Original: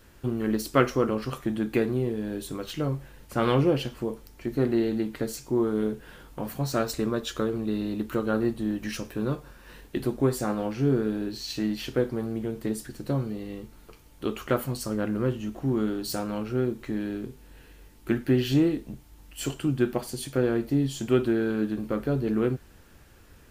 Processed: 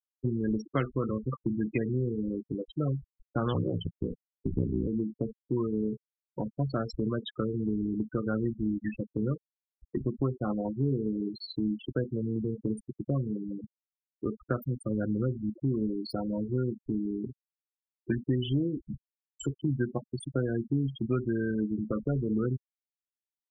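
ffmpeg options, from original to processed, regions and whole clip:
-filter_complex "[0:a]asettb=1/sr,asplit=3[a][b][c];[a]atrim=end=3.534[d];[b]atrim=start=3.53:end=4.87,asetpts=PTS-STARTPTS,afade=t=in:d=0.004:c=qsin,afade=t=out:st=1.336:d=0.004:c=qsin,agate=range=-33dB:threshold=-43dB:ratio=3:release=100:detection=peak,asubboost=boost=7.5:cutoff=210,aeval=exprs='val(0)*sin(2*PI*32*n/s)':c=same[e];[c]atrim=start=4.866[f];[d][e]acrossfade=d=0.004:c1=hsin:c2=qsin[g];[g][f]acrossfade=d=0.004:c1=qsin:c2=hsin,afftfilt=real='re*gte(hypot(re,im),0.0708)':imag='im*gte(hypot(re,im),0.0708)':win_size=1024:overlap=0.75,acrossover=split=180|1200|2600[h][i][j][k];[h]acompressor=threshold=-33dB:ratio=4[l];[i]acompressor=threshold=-36dB:ratio=4[m];[j]acompressor=threshold=-46dB:ratio=4[n];[k]acompressor=threshold=-46dB:ratio=4[o];[l][m][n][o]amix=inputs=4:normalize=0,volume=3.5dB"

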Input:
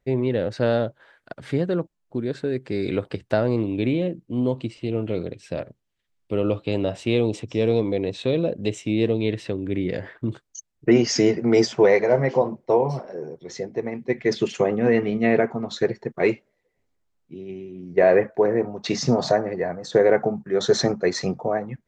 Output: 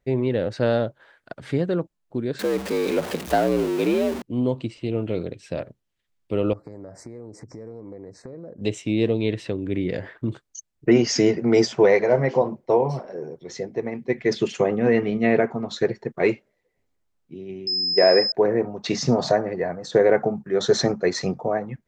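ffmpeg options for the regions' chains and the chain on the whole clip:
-filter_complex "[0:a]asettb=1/sr,asplit=3[a][b][c];[a]atrim=end=2.394[d];[b]atrim=start=2.39:end=4.22,asetpts=PTS-STARTPTS,afade=t=in:d=0.004:c=qsin,afade=t=out:st=1.826:d=0.004:c=qsin,aeval=exprs='val(0)+0.5*0.0473*sgn(val(0))':c=same,equalizer=f=78:t=o:w=0.66:g=-13.5,afreqshift=62[e];[c]atrim=start=4.216[f];[d][e]acrossfade=d=0.004:c1=hsin:c2=qsin[g];[g][f]acrossfade=d=0.004:c1=qsin:c2=hsin,asettb=1/sr,asplit=3[h][i][j];[h]atrim=end=6.534[k];[i]atrim=start=6.53:end=8.61,asetpts=PTS-STARTPTS,afade=t=in:d=0.004:c=qsin,afade=t=out:st=2.076:d=0.004:c=qsin,acompressor=threshold=-36dB:ratio=6:attack=3.2:release=140:knee=1:detection=peak,asuperstop=centerf=3100:order=8:qfactor=1.1[l];[j]atrim=start=8.606[m];[k][l]acrossfade=d=0.004:c1=hsin:c2=qsin[n];[n][m]acrossfade=d=0.004:c1=qsin:c2=hsin,asettb=1/sr,asplit=3[o][p][q];[o]atrim=end=17.674[r];[p]atrim=start=17.67:end=18.32,asetpts=PTS-STARTPTS,afade=t=in:d=0.004:c=qsin,afade=t=out:st=0.646:d=0.004:c=qsin,aeval=exprs='val(0)+0.0891*sin(2*PI*5100*n/s)':c=same,highpass=210[s];[q]atrim=start=18.316[t];[r][s]acrossfade=d=0.004:c1=hsin:c2=qsin[u];[u][t]acrossfade=d=0.004:c1=qsin:c2=hsin"

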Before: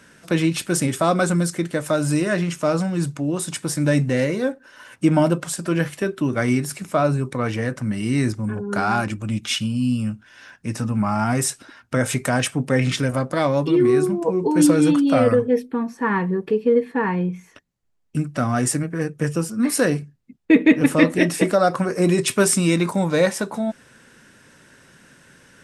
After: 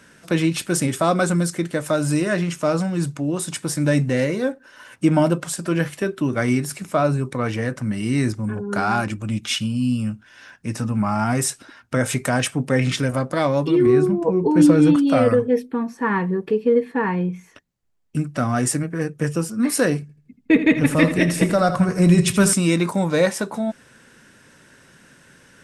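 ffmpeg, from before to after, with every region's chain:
-filter_complex "[0:a]asettb=1/sr,asplit=3[a][b][c];[a]atrim=end=13.864[d];[b]atrim=start=13.86:end=14.96,asetpts=PTS-STARTPTS,afade=t=in:d=0.004:c=qsin,afade=t=out:st=1.096:d=0.004:c=qsin,lowpass=f=3.3k:p=1,lowshelf=f=210:g=6.5[e];[c]atrim=start=14.956[f];[d][e]acrossfade=d=0.004:c1=hsin:c2=qsin[g];[g][f]acrossfade=d=0.004:c1=qsin:c2=hsin,asettb=1/sr,asplit=3[h][i][j];[h]atrim=end=20.014[k];[i]atrim=start=20.01:end=22.53,asetpts=PTS-STARTPTS,afade=t=in:d=0.004:c=qsin,afade=t=out:st=2.516:d=0.004:c=qsin,asubboost=boost=10:cutoff=140,aecho=1:1:81|162|243|324:0.251|0.108|0.0464|0.02,atrim=end_sample=111132[l];[j]atrim=start=22.526[m];[k][l]acrossfade=d=0.004:c1=hsin:c2=qsin[n];[n][m]acrossfade=d=0.004:c1=qsin:c2=hsin"

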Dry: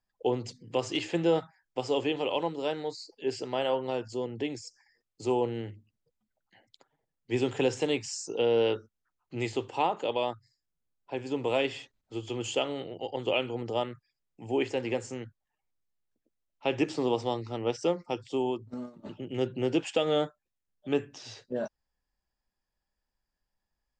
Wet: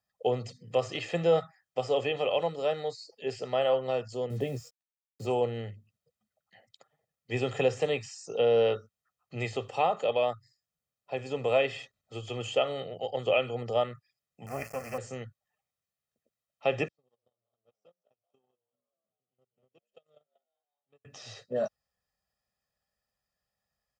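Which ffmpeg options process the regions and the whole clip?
-filter_complex "[0:a]asettb=1/sr,asplit=3[a][b][c];[a]atrim=end=4.304[d];[b]atrim=start=4.3:end=5.26,asetpts=PTS-STARTPTS,afade=t=in:d=0.004:c=qsin,afade=t=out:st=0.956:d=0.004:c=qsin,tiltshelf=f=750:g=8,acrusher=bits=8:mix=0:aa=0.5,asplit=2[e][f];[f]adelay=15,volume=-7.5dB[g];[e][g]amix=inputs=2:normalize=0,atrim=end_sample=42336[h];[c]atrim=start=5.256[i];[d][h]acrossfade=d=0.004:c1=hsin:c2=qsin[j];[j][i]acrossfade=d=0.004:c1=qsin:c2=hsin,asettb=1/sr,asplit=3[k][l][m];[k]atrim=end=14.464[n];[l]atrim=start=14.46:end=14.98,asetpts=PTS-STARTPTS,afade=t=in:d=0.004:c=qsin,afade=t=out:st=0.516:d=0.004:c=qsin,equalizer=f=380:t=o:w=0.41:g=-10.5,acrusher=bits=4:dc=4:mix=0:aa=0.000001,asuperstop=centerf=3600:order=4:qfactor=1.4[o];[m]atrim=start=14.976[p];[n][o]acrossfade=d=0.004:c1=hsin:c2=qsin[q];[q][p]acrossfade=d=0.004:c1=qsin:c2=hsin,asettb=1/sr,asplit=3[r][s][t];[r]atrim=end=16.884[u];[s]atrim=start=16.88:end=21.05,asetpts=PTS-STARTPTS,afade=t=in:d=0.004:c=qsin,afade=t=out:st=4.166:d=0.004:c=qsin,asplit=8[v][w][x][y][z][aa][ab][ac];[w]adelay=194,afreqshift=91,volume=-8.5dB[ad];[x]adelay=388,afreqshift=182,volume=-13.5dB[ae];[y]adelay=582,afreqshift=273,volume=-18.6dB[af];[z]adelay=776,afreqshift=364,volume=-23.6dB[ag];[aa]adelay=970,afreqshift=455,volume=-28.6dB[ah];[ab]adelay=1164,afreqshift=546,volume=-33.7dB[ai];[ac]adelay=1358,afreqshift=637,volume=-38.7dB[aj];[v][ad][ae][af][ag][ah][ai][aj]amix=inputs=8:normalize=0,atrim=end_sample=183897,acompressor=threshold=-37dB:ratio=5:attack=3.2:release=140:knee=1:detection=peak,agate=range=-51dB:threshold=-35dB:ratio=16:release=100:detection=peak[ak];[t]atrim=start=21.046[al];[u][ak]acrossfade=d=0.004:c1=hsin:c2=qsin[am];[am][al]acrossfade=d=0.004:c1=qsin:c2=hsin,acrossover=split=3300[an][ao];[ao]acompressor=threshold=-48dB:ratio=4:attack=1:release=60[ap];[an][ap]amix=inputs=2:normalize=0,highpass=98,aecho=1:1:1.6:0.74"

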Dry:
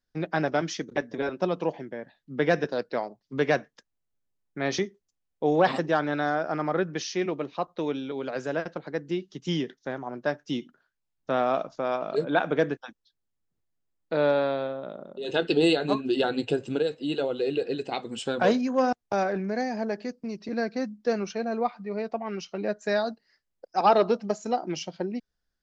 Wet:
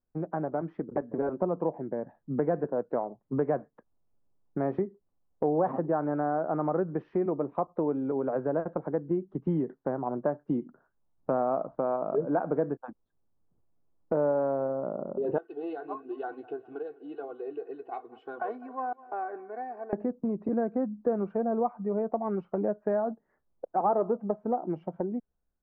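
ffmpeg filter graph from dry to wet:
-filter_complex "[0:a]asettb=1/sr,asplit=3[a][b][c];[a]atrim=end=15.384[d];[b]atrim=start=15.38:end=19.93,asetpts=PTS-STARTPTS,afade=t=in:d=0.004:c=qsin,afade=t=out:st=4.546:d=0.004:c=qsin,aderivative,aecho=1:1:2.7:0.83,atrim=end_sample=200655,aecho=1:1:203|406|609|812:0.0891|0.049|0.027|0.0148,atrim=end_sample=200655[e];[c]atrim=start=19.926[f];[d][e]acrossfade=d=0.004:c1=hsin:c2=qsin[g];[g][f]acrossfade=d=0.004:c1=qsin:c2=hsin,dynaudnorm=f=230:g=9:m=11.5dB,lowpass=f=1.1k:w=0.5412,lowpass=f=1.1k:w=1.3066,acompressor=threshold=-30dB:ratio=2.5"

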